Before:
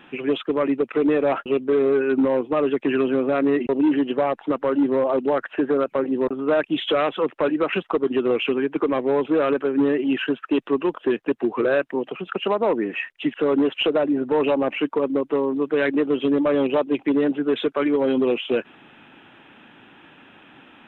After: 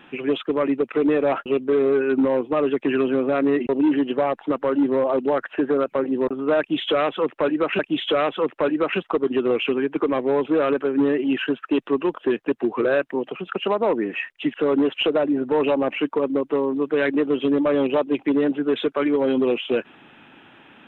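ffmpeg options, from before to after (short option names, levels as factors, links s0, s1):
-filter_complex "[0:a]asplit=2[s0][s1];[s0]atrim=end=7.792[s2];[s1]atrim=start=6.588[s3];[s2][s3]acrossfade=d=0.004:c1=hsin:c2=hsin"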